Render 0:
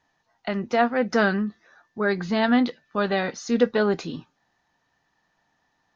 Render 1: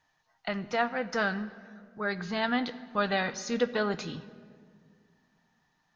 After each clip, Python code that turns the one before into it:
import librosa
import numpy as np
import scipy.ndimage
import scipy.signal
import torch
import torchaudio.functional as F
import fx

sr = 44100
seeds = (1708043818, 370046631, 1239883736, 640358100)

y = fx.peak_eq(x, sr, hz=330.0, db=-7.5, octaves=1.9)
y = fx.rider(y, sr, range_db=10, speed_s=0.5)
y = fx.room_shoebox(y, sr, seeds[0], volume_m3=3700.0, walls='mixed', distance_m=0.52)
y = y * librosa.db_to_amplitude(-2.5)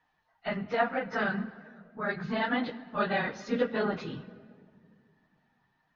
y = fx.phase_scramble(x, sr, seeds[1], window_ms=50)
y = scipy.signal.sosfilt(scipy.signal.butter(2, 3000.0, 'lowpass', fs=sr, output='sos'), y)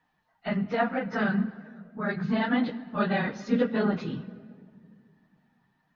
y = fx.peak_eq(x, sr, hz=200.0, db=8.0, octaves=1.2)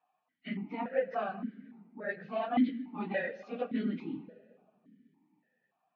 y = fx.vowel_held(x, sr, hz=3.5)
y = y * librosa.db_to_amplitude(5.0)